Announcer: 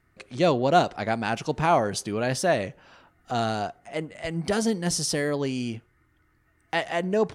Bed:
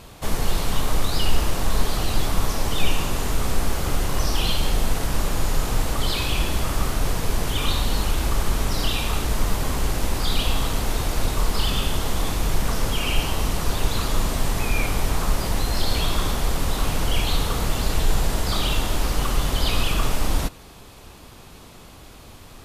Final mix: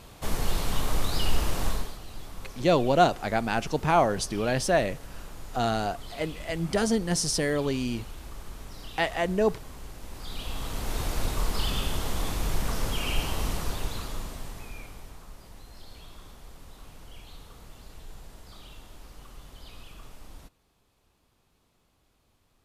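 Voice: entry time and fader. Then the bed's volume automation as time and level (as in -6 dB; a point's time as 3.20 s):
2.25 s, -0.5 dB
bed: 1.68 s -5 dB
1.99 s -19.5 dB
10.00 s -19.5 dB
11.01 s -6 dB
13.51 s -6 dB
15.27 s -25 dB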